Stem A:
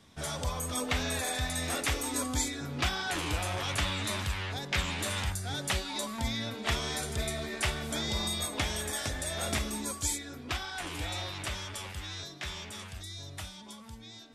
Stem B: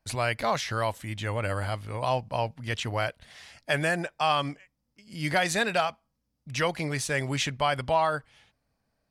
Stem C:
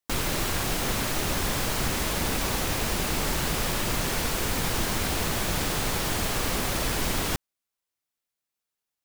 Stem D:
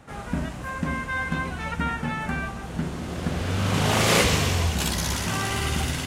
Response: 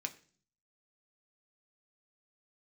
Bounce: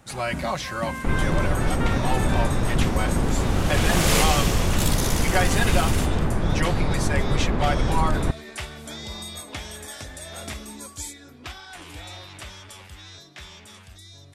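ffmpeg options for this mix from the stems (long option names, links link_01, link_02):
-filter_complex "[0:a]adelay=950,volume=-3dB[link_01];[1:a]aecho=1:1:5.4:0.92,volume=-3dB[link_02];[2:a]lowpass=1500,lowshelf=frequency=350:gain=9.5,adelay=950,volume=0dB[link_03];[3:a]highshelf=frequency=6400:gain=9.5,volume=-4dB[link_04];[link_01][link_02][link_03][link_04]amix=inputs=4:normalize=0"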